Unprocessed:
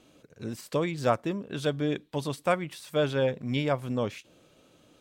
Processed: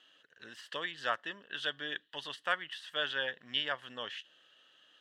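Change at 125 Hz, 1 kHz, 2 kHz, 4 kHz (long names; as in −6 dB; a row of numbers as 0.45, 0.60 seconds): −27.0, −6.5, +2.0, +4.0 decibels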